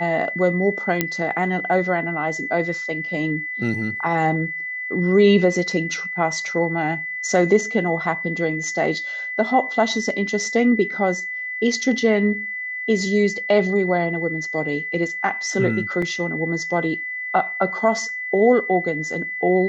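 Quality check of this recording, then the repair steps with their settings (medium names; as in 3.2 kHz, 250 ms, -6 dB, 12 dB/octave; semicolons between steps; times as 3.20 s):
whine 2 kHz -26 dBFS
1.01 s: pop -3 dBFS
16.02 s: dropout 3.6 ms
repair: de-click; band-stop 2 kHz, Q 30; interpolate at 16.02 s, 3.6 ms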